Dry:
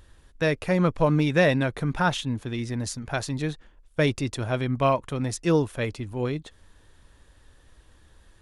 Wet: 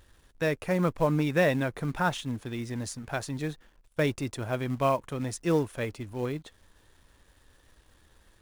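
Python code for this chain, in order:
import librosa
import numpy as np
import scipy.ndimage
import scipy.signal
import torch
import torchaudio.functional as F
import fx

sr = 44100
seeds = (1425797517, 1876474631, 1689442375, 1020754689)

p1 = fx.low_shelf(x, sr, hz=140.0, db=-4.5)
p2 = fx.quant_companded(p1, sr, bits=4)
p3 = p1 + (p2 * 10.0 ** (-8.0 / 20.0))
p4 = fx.dynamic_eq(p3, sr, hz=4000.0, q=0.93, threshold_db=-41.0, ratio=4.0, max_db=-4)
y = p4 * 10.0 ** (-6.0 / 20.0)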